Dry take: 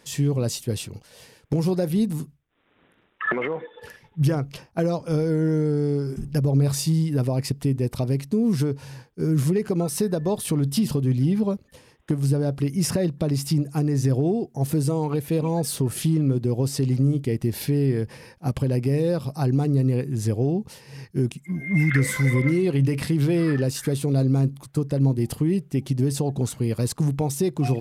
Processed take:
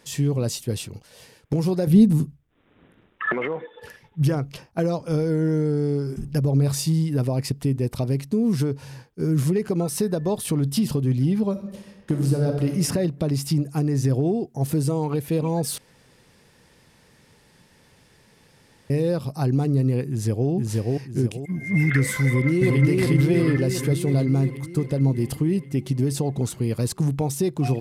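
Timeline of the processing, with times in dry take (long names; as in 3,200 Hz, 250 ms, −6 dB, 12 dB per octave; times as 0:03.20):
0:01.87–0:03.23: low-shelf EQ 410 Hz +10.5 dB
0:11.51–0:12.69: thrown reverb, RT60 1.1 s, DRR 2.5 dB
0:15.78–0:18.90: fill with room tone
0:20.09–0:20.49: delay throw 480 ms, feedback 35%, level −1 dB
0:22.25–0:22.84: delay throw 360 ms, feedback 70%, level −1.5 dB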